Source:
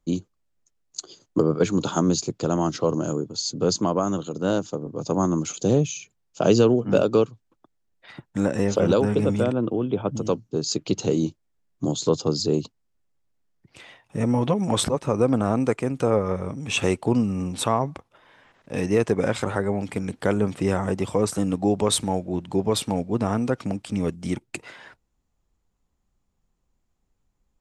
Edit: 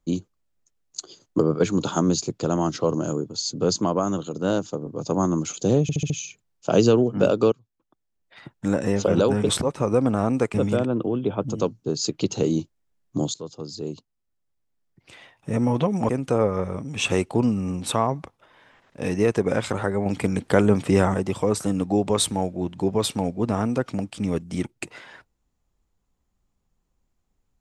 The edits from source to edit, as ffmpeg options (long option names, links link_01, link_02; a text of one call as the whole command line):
ffmpeg -i in.wav -filter_complex "[0:a]asplit=12[link_01][link_02][link_03][link_04][link_05][link_06][link_07][link_08][link_09][link_10][link_11][link_12];[link_01]atrim=end=5.892[link_13];[link_02]atrim=start=5.818:end=5.892[link_14];[link_03]atrim=start=5.818:end=5.892[link_15];[link_04]atrim=start=5.818:end=5.892[link_16];[link_05]atrim=start=5.818:end=7.24,asetpts=PTS-STARTPTS,afade=type=out:start_time=1.418:duration=0.004:curve=hsin:silence=0.158489[link_17];[link_06]atrim=start=7.24:end=9.212,asetpts=PTS-STARTPTS,afade=type=in:duration=1.13:silence=0.158489[link_18];[link_07]atrim=start=14.758:end=15.812[link_19];[link_08]atrim=start=9.208:end=12.01,asetpts=PTS-STARTPTS,afade=type=out:start_time=2.798:duration=0.004:curve=hsin:silence=0.141254[link_20];[link_09]atrim=start=12.01:end=14.762,asetpts=PTS-STARTPTS,afade=type=in:duration=2.15:silence=0.141254[link_21];[link_10]atrim=start=15.808:end=19.782[link_22];[link_11]atrim=start=19.778:end=20.862,asetpts=PTS-STARTPTS,volume=4.5dB[link_23];[link_12]atrim=start=20.858[link_24];[link_13][link_14]acrossfade=duration=0.004:curve1=hsin:curve2=hsin[link_25];[link_25][link_15]acrossfade=duration=0.004:curve1=hsin:curve2=hsin[link_26];[link_26][link_16]acrossfade=duration=0.004:curve1=hsin:curve2=hsin[link_27];[link_17][link_18]concat=n=2:v=0:a=1[link_28];[link_27][link_28]acrossfade=duration=0.004:curve1=hsin:curve2=hsin[link_29];[link_29][link_19]acrossfade=duration=0.004:curve1=hsin:curve2=hsin[link_30];[link_20][link_21]concat=n=2:v=0:a=1[link_31];[link_30][link_31]acrossfade=duration=0.004:curve1=hsin:curve2=hsin[link_32];[link_32][link_22]acrossfade=duration=0.004:curve1=hsin:curve2=hsin[link_33];[link_33][link_23]acrossfade=duration=0.004:curve1=hsin:curve2=hsin[link_34];[link_34][link_24]acrossfade=duration=0.004:curve1=hsin:curve2=hsin" out.wav